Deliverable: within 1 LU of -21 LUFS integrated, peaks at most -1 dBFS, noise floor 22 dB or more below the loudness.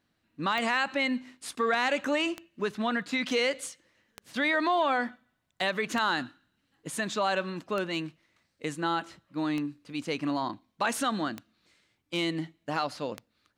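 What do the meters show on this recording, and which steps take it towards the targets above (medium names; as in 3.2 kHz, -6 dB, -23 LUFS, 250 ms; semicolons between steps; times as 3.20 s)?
clicks found 8; loudness -30.0 LUFS; peak level -14.5 dBFS; loudness target -21.0 LUFS
-> de-click; trim +9 dB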